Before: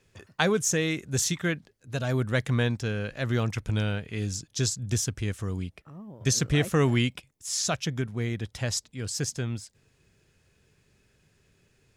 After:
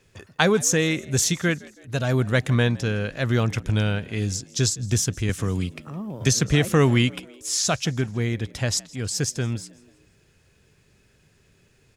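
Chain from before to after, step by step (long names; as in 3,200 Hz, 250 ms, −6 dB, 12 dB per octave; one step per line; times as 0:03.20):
echo with shifted repeats 163 ms, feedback 48%, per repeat +64 Hz, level −23 dB
0:05.29–0:06.73: multiband upward and downward compressor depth 40%
level +5 dB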